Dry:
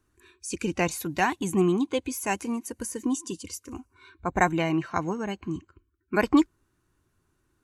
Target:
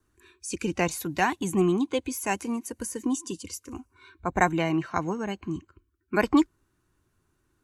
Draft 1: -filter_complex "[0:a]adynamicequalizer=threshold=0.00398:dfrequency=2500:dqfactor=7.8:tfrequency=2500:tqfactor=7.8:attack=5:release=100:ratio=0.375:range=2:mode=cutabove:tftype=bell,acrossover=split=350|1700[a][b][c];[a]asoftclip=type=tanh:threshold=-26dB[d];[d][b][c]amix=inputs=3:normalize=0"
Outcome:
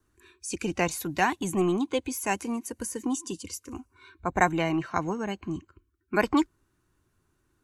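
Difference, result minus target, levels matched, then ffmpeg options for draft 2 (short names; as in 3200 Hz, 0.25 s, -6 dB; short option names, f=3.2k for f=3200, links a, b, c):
soft clip: distortion +14 dB
-filter_complex "[0:a]adynamicequalizer=threshold=0.00398:dfrequency=2500:dqfactor=7.8:tfrequency=2500:tqfactor=7.8:attack=5:release=100:ratio=0.375:range=2:mode=cutabove:tftype=bell,acrossover=split=350|1700[a][b][c];[a]asoftclip=type=tanh:threshold=-14.5dB[d];[d][b][c]amix=inputs=3:normalize=0"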